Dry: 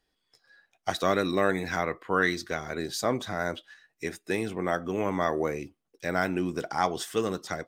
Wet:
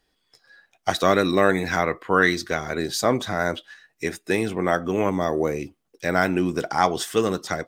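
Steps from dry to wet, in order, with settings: 5.09–5.59 bell 1600 Hz -11.5 dB -> -4 dB 1.9 oct; gain +6.5 dB

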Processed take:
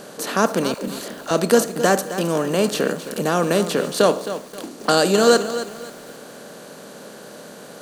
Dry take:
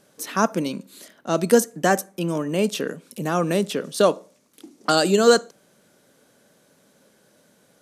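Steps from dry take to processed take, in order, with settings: per-bin compression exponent 0.6; 0.74–1.31 dispersion lows, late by 0.139 s, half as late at 310 Hz; lo-fi delay 0.265 s, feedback 35%, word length 6-bit, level -11.5 dB; gain -1 dB

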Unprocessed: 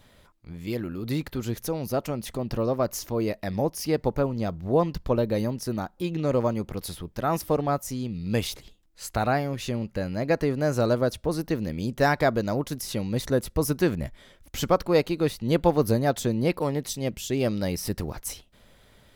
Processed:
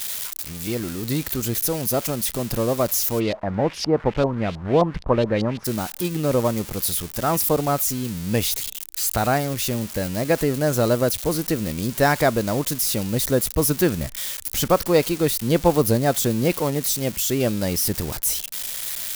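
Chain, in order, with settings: switching spikes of -22.5 dBFS; 3.19–5.64 LFO low-pass saw up 1.5 Hz -> 6.9 Hz 720–4200 Hz; gain +3.5 dB

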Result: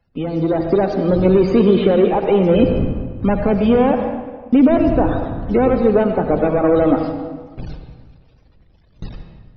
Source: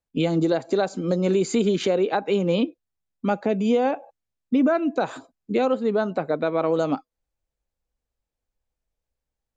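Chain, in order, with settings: delta modulation 32 kbps, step -39.5 dBFS; wind noise 120 Hz -38 dBFS; loudest bins only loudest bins 64; gate with hold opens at -30 dBFS; AGC gain up to 12 dB; on a send: LPF 4000 Hz 12 dB/oct + reverb RT60 1.5 s, pre-delay 76 ms, DRR 5 dB; on the sum: gain -2 dB

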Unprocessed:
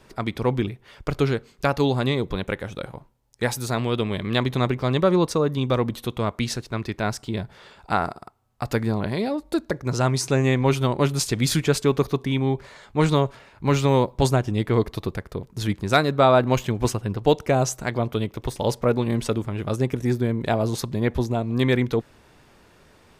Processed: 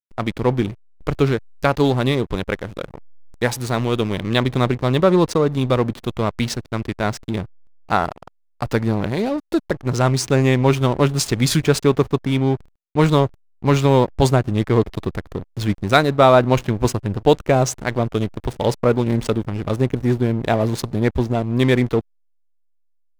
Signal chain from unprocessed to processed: backlash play -29 dBFS; gain +4.5 dB

